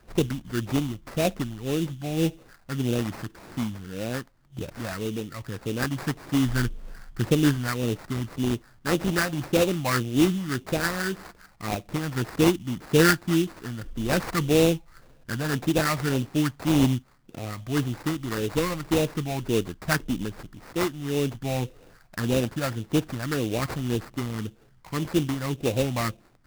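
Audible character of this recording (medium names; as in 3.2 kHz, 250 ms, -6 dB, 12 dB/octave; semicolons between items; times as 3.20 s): phasing stages 4, 1.8 Hz, lowest notch 400–1700 Hz; aliases and images of a low sample rate 3.2 kHz, jitter 20%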